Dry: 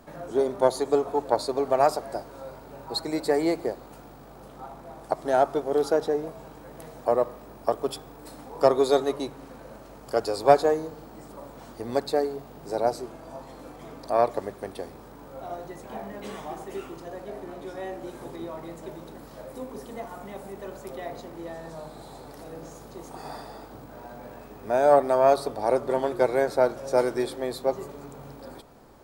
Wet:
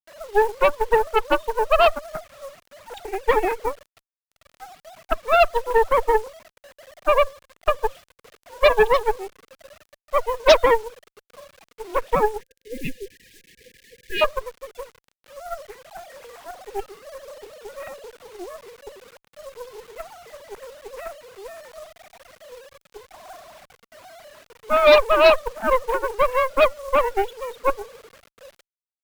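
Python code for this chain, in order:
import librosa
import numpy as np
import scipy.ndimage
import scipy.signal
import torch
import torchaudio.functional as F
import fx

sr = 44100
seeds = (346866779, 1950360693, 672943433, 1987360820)

y = fx.sine_speech(x, sr)
y = fx.quant_dither(y, sr, seeds[0], bits=8, dither='none')
y = fx.cheby_harmonics(y, sr, harmonics=(6, 7, 8), levels_db=(-18, -29, -9), full_scale_db=-7.0)
y = fx.spec_erase(y, sr, start_s=12.41, length_s=1.81, low_hz=530.0, high_hz=1600.0)
y = y * librosa.db_to_amplitude(3.0)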